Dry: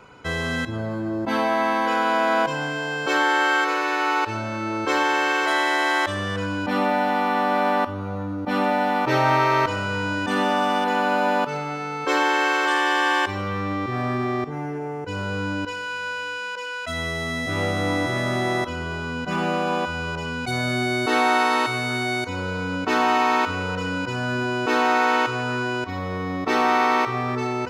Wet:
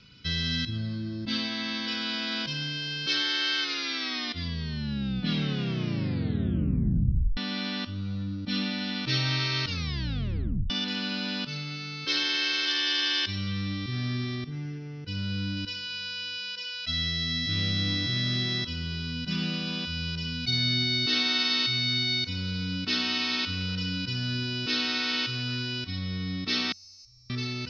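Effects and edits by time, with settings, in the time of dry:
3.57 tape stop 3.80 s
9.64 tape stop 1.06 s
14.35–15.57 high shelf 6800 Hz -8 dB
26.72–27.3 inverse Chebyshev band-stop 140–3600 Hz
whole clip: EQ curve 200 Hz 0 dB, 420 Hz -17 dB, 880 Hz -26 dB, 1400 Hz -13 dB, 2300 Hz -4 dB, 3700 Hz +9 dB, 5400 Hz +10 dB, 8000 Hz -30 dB; gain -1 dB

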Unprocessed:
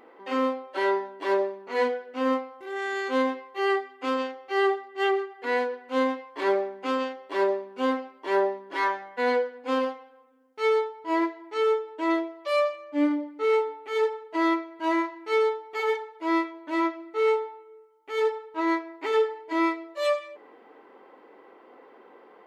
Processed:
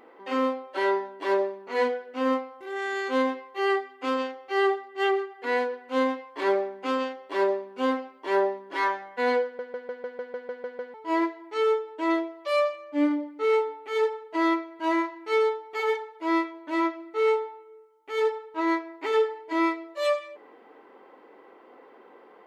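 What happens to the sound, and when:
9.44 stutter in place 0.15 s, 10 plays

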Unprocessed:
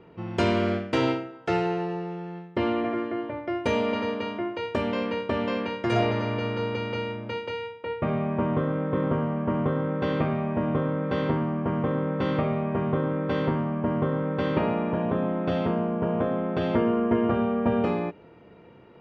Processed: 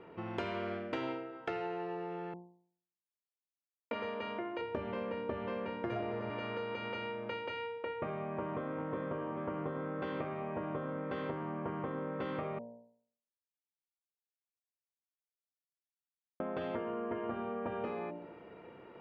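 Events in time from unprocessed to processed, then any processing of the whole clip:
2.34–3.91 mute
4.61–6.3 tilt -2.5 dB/oct
8.14–8.91 echo throw 0.4 s, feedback 75%, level -8 dB
12.59–16.4 mute
whole clip: tone controls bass -9 dB, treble -12 dB; de-hum 58.58 Hz, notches 18; compressor 4:1, threshold -38 dBFS; gain +1 dB

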